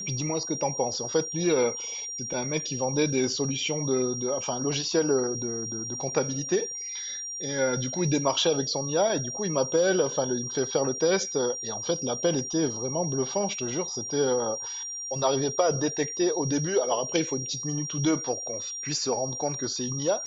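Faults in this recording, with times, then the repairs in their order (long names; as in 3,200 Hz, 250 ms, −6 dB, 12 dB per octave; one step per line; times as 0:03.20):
whistle 5,700 Hz −33 dBFS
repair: notch filter 5,700 Hz, Q 30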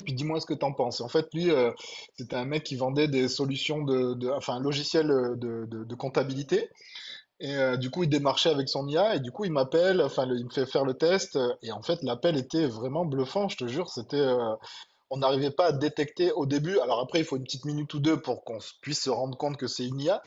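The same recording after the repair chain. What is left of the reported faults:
none of them is left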